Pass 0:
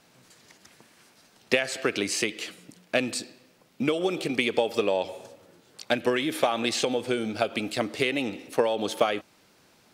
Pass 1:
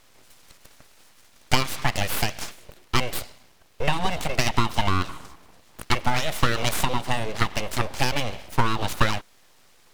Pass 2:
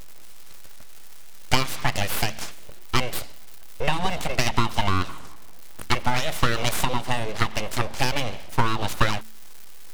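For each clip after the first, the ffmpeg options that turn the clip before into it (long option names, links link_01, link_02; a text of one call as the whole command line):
ffmpeg -i in.wav -af "aeval=exprs='abs(val(0))':channel_layout=same,volume=5dB" out.wav
ffmpeg -i in.wav -af "aeval=exprs='val(0)+0.5*0.0422*sgn(val(0))':channel_layout=same,bandreject=frequency=73.32:width_type=h:width=4,bandreject=frequency=146.64:width_type=h:width=4,bandreject=frequency=219.96:width_type=h:width=4,bandreject=frequency=293.28:width_type=h:width=4" out.wav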